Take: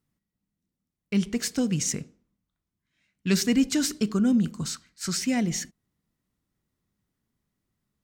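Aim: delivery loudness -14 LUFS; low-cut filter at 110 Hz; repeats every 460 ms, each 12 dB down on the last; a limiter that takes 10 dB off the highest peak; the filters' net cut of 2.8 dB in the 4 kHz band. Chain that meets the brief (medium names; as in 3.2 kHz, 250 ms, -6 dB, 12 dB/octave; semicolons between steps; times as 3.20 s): high-pass 110 Hz; peaking EQ 4 kHz -4 dB; peak limiter -23 dBFS; feedback delay 460 ms, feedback 25%, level -12 dB; trim +18.5 dB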